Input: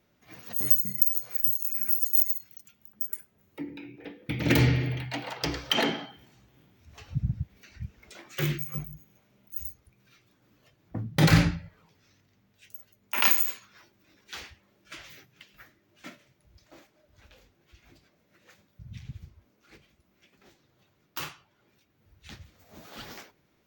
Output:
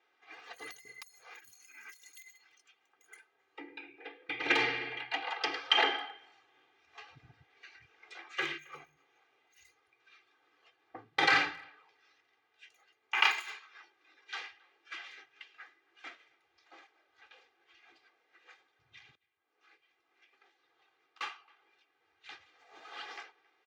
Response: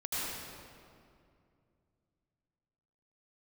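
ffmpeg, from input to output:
-filter_complex "[0:a]aecho=1:1:2.5:0.94,asettb=1/sr,asplit=3[a][b][c];[a]atrim=end=19.154[d];[b]atrim=start=19.15:end=21.21,asetpts=PTS-STARTPTS,afade=t=in:d=0.004:c=qsin,afade=t=out:st=2.056:d=0.004:c=qsin,acompressor=threshold=-59dB:ratio=12[e];[c]atrim=start=21.206[f];[d][e]acrossfade=d=0.004:c1=hsin:c2=qsin[g];[g][f]acrossfade=d=0.004:c1=qsin:c2=hsin,highpass=760,lowpass=3.1k,asplit=2[h][i];[i]adelay=270,highpass=300,lowpass=3.4k,asoftclip=type=hard:threshold=-18dB,volume=-26dB[j];[h][j]amix=inputs=2:normalize=0"

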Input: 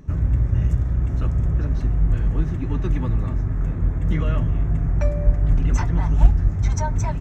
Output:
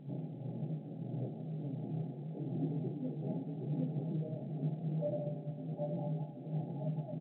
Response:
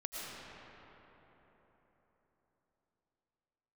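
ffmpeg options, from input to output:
-filter_complex "[0:a]flanger=delay=19.5:depth=6.3:speed=1.3,aecho=1:1:771:0.631,asplit=2[a][b];[1:a]atrim=start_sample=2205[c];[b][c]afir=irnorm=-1:irlink=0,volume=-16.5dB[d];[a][d]amix=inputs=2:normalize=0,alimiter=limit=-12.5dB:level=0:latency=1:release=139,tremolo=f=1.5:d=0.57,asplit=2[e][f];[f]adelay=27,volume=-9dB[g];[e][g]amix=inputs=2:normalize=0,acompressor=threshold=-23dB:ratio=12,bandreject=f=60:t=h:w=6,bandreject=f=120:t=h:w=6,bandreject=f=180:t=h:w=6,bandreject=f=240:t=h:w=6,bandreject=f=300:t=h:w=6,bandreject=f=360:t=h:w=6,bandreject=f=420:t=h:w=6,afftfilt=real='re*between(b*sr/4096,120,860)':imag='im*between(b*sr/4096,120,860)':win_size=4096:overlap=0.75,volume=-1dB" -ar 8000 -c:a pcm_mulaw

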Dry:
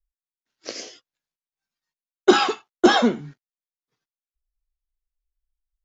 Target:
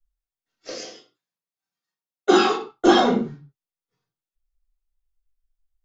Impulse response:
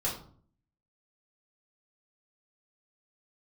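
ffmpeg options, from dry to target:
-filter_complex "[0:a]asettb=1/sr,asplit=3[a][b][c];[a]atrim=end=0.824[d];[b]atrim=start=0.82:end=2.53,asetpts=PTS-STARTPTS,afade=t=in:d=0.004:c=qsin,afade=t=out:st=1.706:d=0.004:c=qsin,highpass=140[e];[c]atrim=start=2.526[f];[d][e]acrossfade=d=0.004:c1=hsin:c2=qsin[g];[g][f]acrossfade=d=0.004:c1=qsin:c2=hsin[h];[1:a]atrim=start_sample=2205,afade=t=out:st=0.24:d=0.01,atrim=end_sample=11025[i];[h][i]afir=irnorm=-1:irlink=0,volume=-5.5dB"

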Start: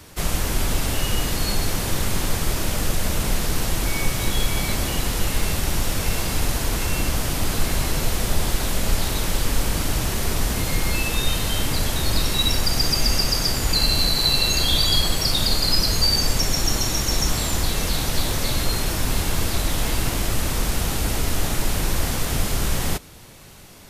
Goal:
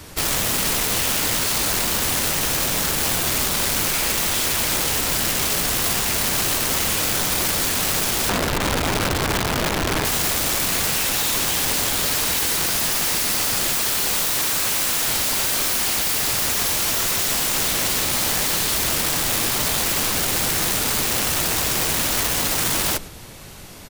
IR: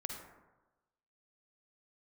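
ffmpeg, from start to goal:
-filter_complex "[0:a]aecho=1:1:106:0.0891,asettb=1/sr,asplit=3[a][b][c];[a]atrim=end=8.294[d];[b]atrim=start=8.29:end=10.05,asetpts=PTS-STARTPTS,afade=t=in:d=0.004:c=qsin,afade=t=out:st=1.756:d=0.004:c=qsin,adynamicsmooth=sensitivity=1:basefreq=1.7k[e];[c]atrim=start=10.046[f];[d][e]acrossfade=d=0.004:c1=hsin:c2=qsin[g];[g][f]acrossfade=d=0.004:c1=qsin:c2=hsin,aeval=exprs='(mod(11.9*val(0)+1,2)-1)/11.9':c=same,volume=5dB"

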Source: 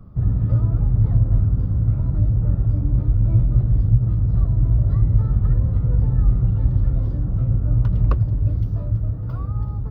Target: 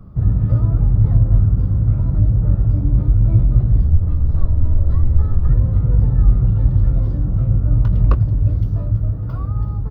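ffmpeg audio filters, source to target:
-filter_complex "[0:a]asplit=2[a][b];[b]adelay=21,volume=-12dB[c];[a][c]amix=inputs=2:normalize=0,asettb=1/sr,asplit=3[d][e][f];[d]atrim=end=3.824[g];[e]atrim=start=3.82:end=5.49,asetpts=PTS-STARTPTS,afade=t=in:d=0.004:c=qsin,afade=t=out:st=1.666:d=0.004:c=qsin,afreqshift=-31[h];[f]atrim=start=5.486[i];[g][h]acrossfade=d=0.004:c1=hsin:c2=qsin[j];[j][i]acrossfade=d=0.004:c1=qsin:c2=hsin,volume=3dB"

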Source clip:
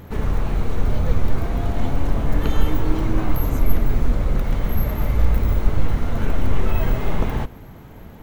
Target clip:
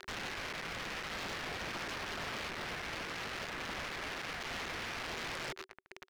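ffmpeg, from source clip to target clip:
-filter_complex "[0:a]tremolo=f=120:d=0.974,acompressor=threshold=-26dB:ratio=3,asetrate=59535,aresample=44100,highpass=96,asplit=2[a][b];[b]asplit=5[c][d][e][f][g];[c]adelay=125,afreqshift=110,volume=-13.5dB[h];[d]adelay=250,afreqshift=220,volume=-19dB[i];[e]adelay=375,afreqshift=330,volume=-24.5dB[j];[f]adelay=500,afreqshift=440,volume=-30dB[k];[g]adelay=625,afreqshift=550,volume=-35.6dB[l];[h][i][j][k][l]amix=inputs=5:normalize=0[m];[a][m]amix=inputs=2:normalize=0,acrusher=bits=5:mix=0:aa=0.000001,lowpass=f=1.7k:t=q:w=2,bandreject=f=380:w=12,aeval=exprs='0.015*(abs(mod(val(0)/0.015+3,4)-2)-1)':c=same,volume=2dB"

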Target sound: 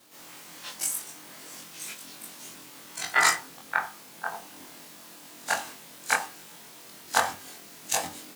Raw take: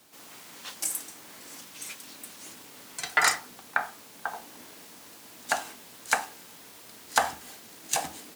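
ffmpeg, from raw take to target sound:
-af "afftfilt=real='re':imag='-im':win_size=2048:overlap=0.75,volume=5.5dB"

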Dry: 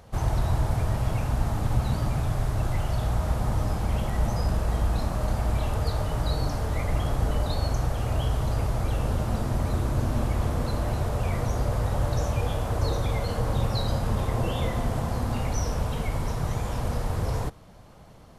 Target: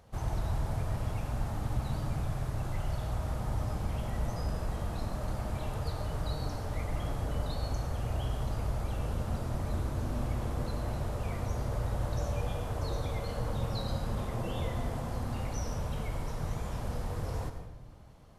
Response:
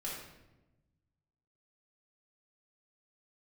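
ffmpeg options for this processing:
-filter_complex "[0:a]asplit=2[a][b];[1:a]atrim=start_sample=2205,adelay=95[c];[b][c]afir=irnorm=-1:irlink=0,volume=-8dB[d];[a][d]amix=inputs=2:normalize=0,volume=-8.5dB"

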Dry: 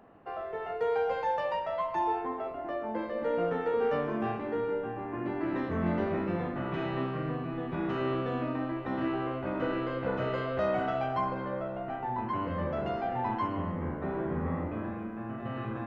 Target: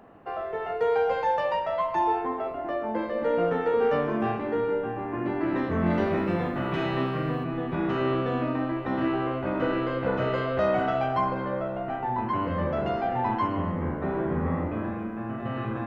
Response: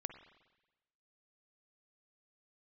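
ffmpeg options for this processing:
-filter_complex "[0:a]asettb=1/sr,asplit=3[a][b][c];[a]atrim=end=5.904[d];[b]atrim=start=5.9:end=7.44,asetpts=PTS-STARTPTS,afade=t=in:d=0.004:c=qsin,afade=t=out:st=1.536:d=0.004:c=qsin,highshelf=f=4.4k:g=11[e];[c]atrim=start=7.436[f];[d][e]acrossfade=d=0.004:c1=hsin:c2=qsin[g];[g][f]acrossfade=d=0.004:c1=qsin:c2=hsin,volume=5dB"

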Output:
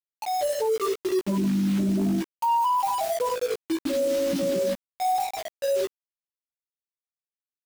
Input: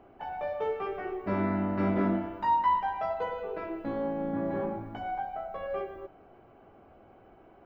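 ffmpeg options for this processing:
-filter_complex "[0:a]asplit=2[a][b];[b]acompressor=threshold=-42dB:ratio=16,volume=-3dB[c];[a][c]amix=inputs=2:normalize=0,afftfilt=real='re*gte(hypot(re,im),0.178)':imag='im*gte(hypot(re,im),0.178)':win_size=1024:overlap=0.75,aeval=exprs='0.158*(cos(1*acos(clip(val(0)/0.158,-1,1)))-cos(1*PI/2))+0.0251*(cos(5*acos(clip(val(0)/0.158,-1,1)))-cos(5*PI/2))+0.0126*(cos(7*acos(clip(val(0)/0.158,-1,1)))-cos(7*PI/2))':c=same,acrusher=bits=6:mix=0:aa=0.000001,asplit=2[d][e];[e]adelay=16,volume=-3dB[f];[d][f]amix=inputs=2:normalize=0,alimiter=level_in=2.5dB:limit=-24dB:level=0:latency=1:release=14,volume=-2.5dB,volume=8dB"

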